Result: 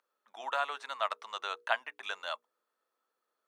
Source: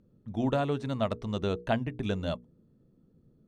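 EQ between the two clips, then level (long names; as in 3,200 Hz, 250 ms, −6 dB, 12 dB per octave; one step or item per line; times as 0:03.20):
high-pass filter 1,100 Hz 24 dB per octave
tilt shelving filter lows +8.5 dB, about 1,400 Hz
high-shelf EQ 5,200 Hz +4.5 dB
+6.5 dB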